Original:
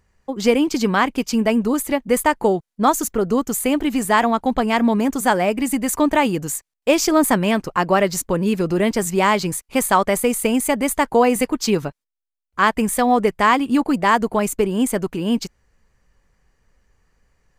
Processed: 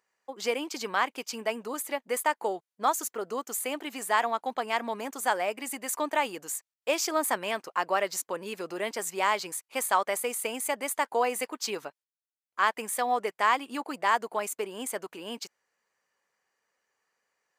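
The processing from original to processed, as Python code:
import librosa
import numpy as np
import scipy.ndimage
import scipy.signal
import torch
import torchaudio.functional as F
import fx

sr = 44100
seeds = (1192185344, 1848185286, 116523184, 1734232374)

y = scipy.signal.sosfilt(scipy.signal.butter(2, 560.0, 'highpass', fs=sr, output='sos'), x)
y = F.gain(torch.from_numpy(y), -8.0).numpy()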